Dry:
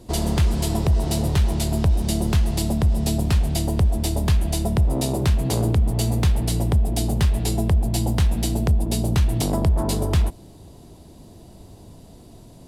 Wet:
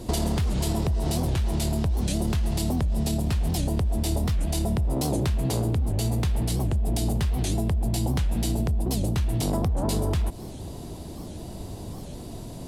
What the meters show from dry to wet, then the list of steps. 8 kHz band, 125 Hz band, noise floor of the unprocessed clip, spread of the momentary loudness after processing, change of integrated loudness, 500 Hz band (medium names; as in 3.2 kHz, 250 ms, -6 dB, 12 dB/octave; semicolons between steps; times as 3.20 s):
-3.5 dB, -4.5 dB, -45 dBFS, 13 LU, -4.5 dB, -3.5 dB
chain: peak limiter -19.5 dBFS, peak gain reduction 9 dB; compression, threshold -29 dBFS, peak gain reduction 7.5 dB; warped record 78 rpm, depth 250 cents; trim +7.5 dB